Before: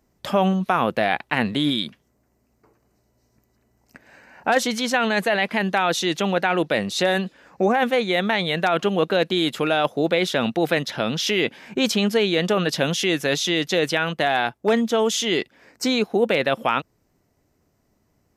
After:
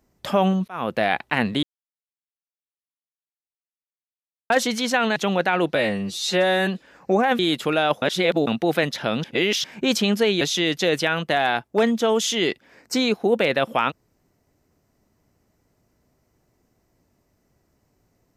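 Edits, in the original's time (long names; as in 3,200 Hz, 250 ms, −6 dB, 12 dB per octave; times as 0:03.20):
0:00.68–0:01.10: fade in equal-power
0:01.63–0:04.50: silence
0:05.16–0:06.13: remove
0:06.72–0:07.18: time-stretch 2×
0:07.90–0:09.33: remove
0:09.96–0:10.41: reverse
0:11.18–0:11.58: reverse
0:12.35–0:13.31: remove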